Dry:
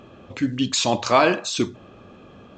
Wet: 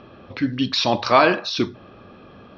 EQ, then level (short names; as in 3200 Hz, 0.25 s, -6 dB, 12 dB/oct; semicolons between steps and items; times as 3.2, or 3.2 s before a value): rippled Chebyshev low-pass 5700 Hz, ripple 3 dB; +3.5 dB